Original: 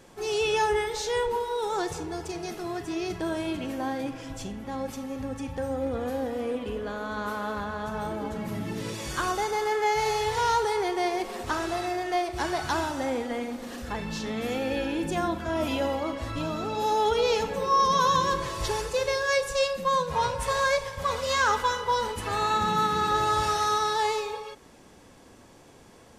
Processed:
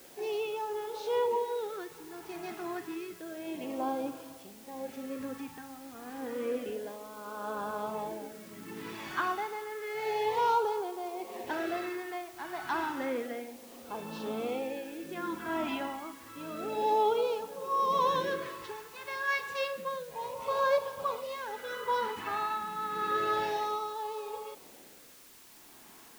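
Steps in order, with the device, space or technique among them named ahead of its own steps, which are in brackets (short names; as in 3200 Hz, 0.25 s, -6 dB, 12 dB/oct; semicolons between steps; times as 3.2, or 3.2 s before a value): shortwave radio (BPF 290–2500 Hz; tremolo 0.77 Hz, depth 70%; LFO notch sine 0.3 Hz 500–2000 Hz; white noise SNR 21 dB)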